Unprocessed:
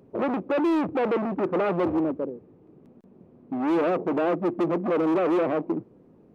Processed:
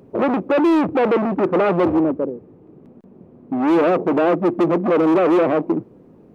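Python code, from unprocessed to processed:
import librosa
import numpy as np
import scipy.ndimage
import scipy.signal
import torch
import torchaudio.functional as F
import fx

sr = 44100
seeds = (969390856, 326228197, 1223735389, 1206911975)

y = fx.high_shelf(x, sr, hz=3400.0, db=-7.5, at=(1.98, 3.58))
y = y * 10.0 ** (7.5 / 20.0)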